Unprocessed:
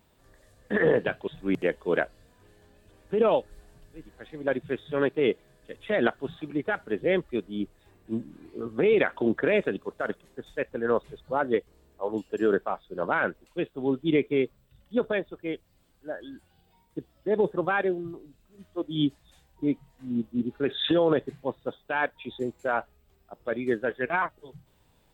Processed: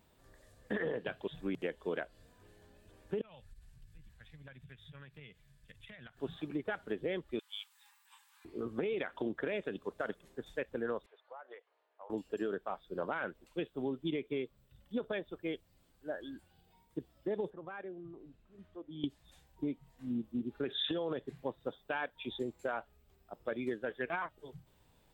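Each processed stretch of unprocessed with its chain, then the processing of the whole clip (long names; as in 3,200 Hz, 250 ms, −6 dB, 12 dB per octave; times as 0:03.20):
0:03.21–0:06.17: drawn EQ curve 140 Hz 0 dB, 340 Hz −27 dB, 2,200 Hz −6 dB + transient designer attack +8 dB, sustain +3 dB + downward compressor, threshold −46 dBFS
0:07.39–0:08.45: linear-phase brick-wall high-pass 790 Hz + high-shelf EQ 3,000 Hz +9.5 dB
0:11.06–0:12.10: high-pass filter 650 Hz 24 dB per octave + downward compressor 8 to 1, threshold −41 dBFS + high-frequency loss of the air 370 metres
0:17.50–0:19.04: bass and treble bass 0 dB, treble −13 dB + downward compressor 2.5 to 1, threshold −46 dBFS
whole clip: dynamic equaliser 3,300 Hz, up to +5 dB, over −52 dBFS, Q 3.1; downward compressor 10 to 1, threshold −29 dBFS; level −3.5 dB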